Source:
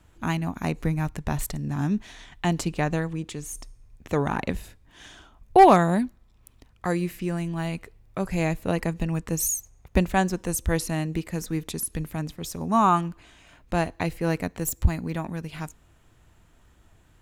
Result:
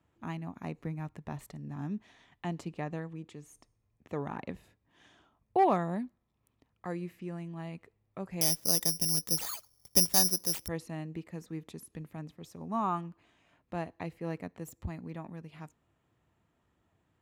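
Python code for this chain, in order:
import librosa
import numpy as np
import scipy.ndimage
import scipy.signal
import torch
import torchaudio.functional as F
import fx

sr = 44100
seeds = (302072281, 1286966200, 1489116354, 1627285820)

y = scipy.signal.sosfilt(scipy.signal.butter(2, 110.0, 'highpass', fs=sr, output='sos'), x)
y = fx.high_shelf(y, sr, hz=3700.0, db=-12.0)
y = fx.notch(y, sr, hz=1500.0, q=14.0)
y = fx.resample_bad(y, sr, factor=8, down='none', up='zero_stuff', at=(8.41, 10.68))
y = F.gain(torch.from_numpy(y), -11.0).numpy()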